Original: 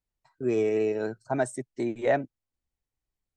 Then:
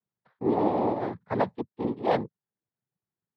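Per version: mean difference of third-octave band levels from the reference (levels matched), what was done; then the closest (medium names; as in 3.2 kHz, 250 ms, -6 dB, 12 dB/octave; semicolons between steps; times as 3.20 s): 7.0 dB: low-pass 1.8 kHz 24 dB/octave; bass shelf 150 Hz +5 dB; noise-vocoded speech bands 6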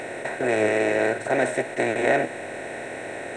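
10.0 dB: spectral levelling over time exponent 0.2; peaking EQ 2.5 kHz +9 dB 1.8 oct; flange 1.6 Hz, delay 9.1 ms, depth 4.3 ms, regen +71%; trim +1 dB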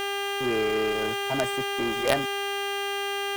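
13.5 dB: treble shelf 8.5 kHz -10.5 dB; mains buzz 400 Hz, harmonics 8, -29 dBFS -1 dB/octave; in parallel at -3.5 dB: companded quantiser 2-bit; on the sum: trim -5 dB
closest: first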